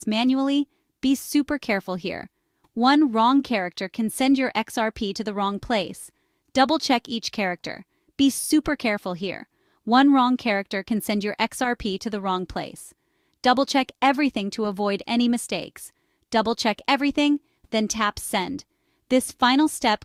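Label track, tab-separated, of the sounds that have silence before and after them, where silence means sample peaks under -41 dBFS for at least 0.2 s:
1.030000	2.260000	sound
2.770000	6.080000	sound
6.550000	7.820000	sound
8.190000	9.430000	sound
9.870000	12.900000	sound
13.440000	15.880000	sound
16.320000	17.370000	sound
17.720000	18.610000	sound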